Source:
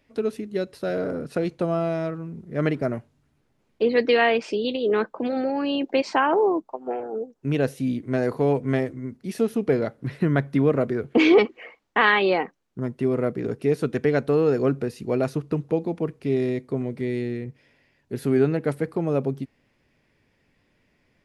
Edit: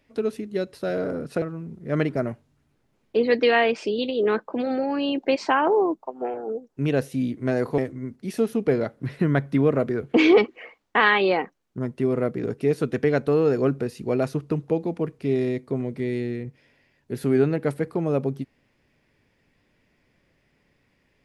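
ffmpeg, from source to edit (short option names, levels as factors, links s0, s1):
-filter_complex "[0:a]asplit=3[s0][s1][s2];[s0]atrim=end=1.422[s3];[s1]atrim=start=2.078:end=8.442[s4];[s2]atrim=start=8.788[s5];[s3][s4]acrossfade=d=0.004:c1=hsin:c2=hsin[s6];[s6][s5]acrossfade=d=0.004:c1=hsin:c2=hsin"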